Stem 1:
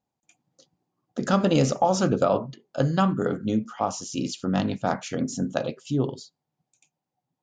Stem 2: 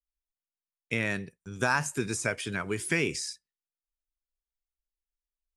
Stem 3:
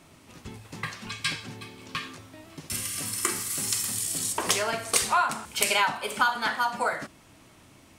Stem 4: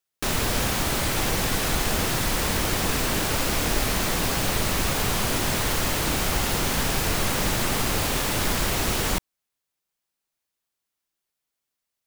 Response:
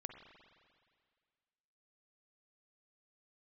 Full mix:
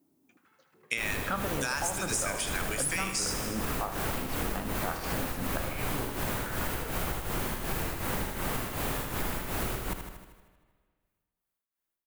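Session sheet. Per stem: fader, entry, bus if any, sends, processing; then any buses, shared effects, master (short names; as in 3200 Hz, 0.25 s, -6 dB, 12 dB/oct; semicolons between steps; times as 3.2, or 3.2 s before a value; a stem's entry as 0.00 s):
-10.5 dB, 0.00 s, no send, echo send -13 dB, LPF 1900 Hz 6 dB/oct; bell 1500 Hz +14.5 dB 1.9 oct
+1.0 dB, 0.00 s, no send, echo send -11 dB, tilt +4.5 dB/oct
-7.0 dB, 0.00 s, no send, echo send -8.5 dB, stepped band-pass 2.7 Hz 290–4800 Hz; auto duck -9 dB, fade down 1.70 s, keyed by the first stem
-4.5 dB, 0.75 s, send -5 dB, echo send -6 dB, EQ curve 1500 Hz 0 dB, 5500 Hz -9 dB, 14000 Hz +1 dB; beating tremolo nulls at 2.7 Hz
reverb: on, RT60 2.0 s, pre-delay 43 ms
echo: feedback echo 78 ms, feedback 60%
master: compressor 6:1, threshold -28 dBFS, peak gain reduction 12 dB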